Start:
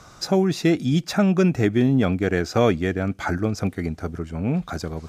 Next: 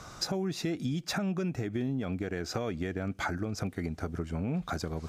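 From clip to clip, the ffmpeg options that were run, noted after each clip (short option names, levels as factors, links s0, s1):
-af "alimiter=limit=0.141:level=0:latency=1:release=195,acompressor=threshold=0.0355:ratio=6"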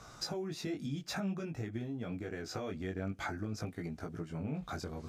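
-af "flanger=delay=17.5:depth=3.6:speed=0.51,volume=0.708"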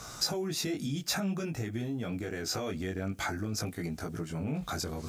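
-filter_complex "[0:a]asplit=2[s0][s1];[s1]alimiter=level_in=3.76:limit=0.0631:level=0:latency=1:release=29,volume=0.266,volume=1.06[s2];[s0][s2]amix=inputs=2:normalize=0,crystalizer=i=2:c=0"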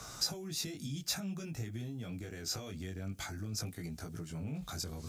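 -filter_complex "[0:a]acrossover=split=170|3000[s0][s1][s2];[s1]acompressor=threshold=0.00447:ratio=2.5[s3];[s0][s3][s2]amix=inputs=3:normalize=0,volume=0.75"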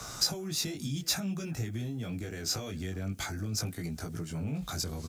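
-filter_complex "[0:a]acrossover=split=210|2000[s0][s1][s2];[s1]aecho=1:1:376:0.133[s3];[s2]acrusher=bits=6:mode=log:mix=0:aa=0.000001[s4];[s0][s3][s4]amix=inputs=3:normalize=0,volume=1.88"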